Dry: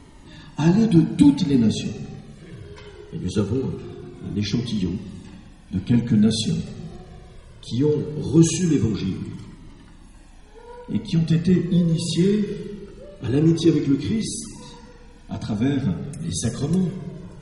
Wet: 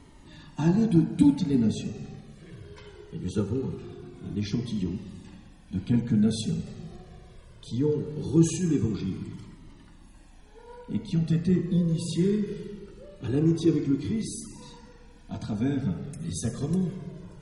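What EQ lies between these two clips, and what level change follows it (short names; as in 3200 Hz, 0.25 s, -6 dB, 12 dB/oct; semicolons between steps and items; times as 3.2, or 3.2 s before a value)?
dynamic EQ 3600 Hz, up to -5 dB, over -42 dBFS, Q 0.72; -5.5 dB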